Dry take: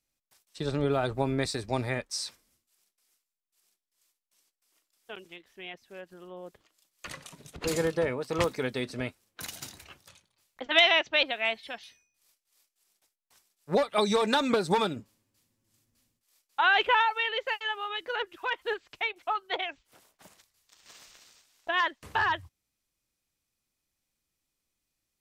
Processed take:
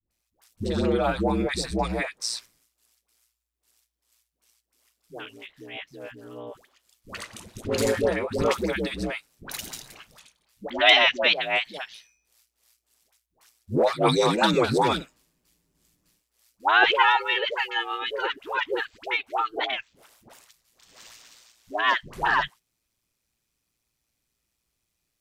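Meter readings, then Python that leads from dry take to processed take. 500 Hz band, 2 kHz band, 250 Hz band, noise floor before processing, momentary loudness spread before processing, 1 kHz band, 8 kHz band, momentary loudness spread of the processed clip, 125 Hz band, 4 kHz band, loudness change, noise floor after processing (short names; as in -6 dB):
+4.0 dB, +4.5 dB, +5.0 dB, -84 dBFS, 21 LU, +4.5 dB, +4.5 dB, 21 LU, +3.5 dB, +4.5 dB, +4.5 dB, -79 dBFS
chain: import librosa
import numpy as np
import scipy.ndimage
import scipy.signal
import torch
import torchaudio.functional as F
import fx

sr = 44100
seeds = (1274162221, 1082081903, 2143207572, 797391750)

y = x * np.sin(2.0 * np.pi * 58.0 * np.arange(len(x)) / sr)
y = fx.dispersion(y, sr, late='highs', ms=107.0, hz=600.0)
y = y * librosa.db_to_amplitude(7.5)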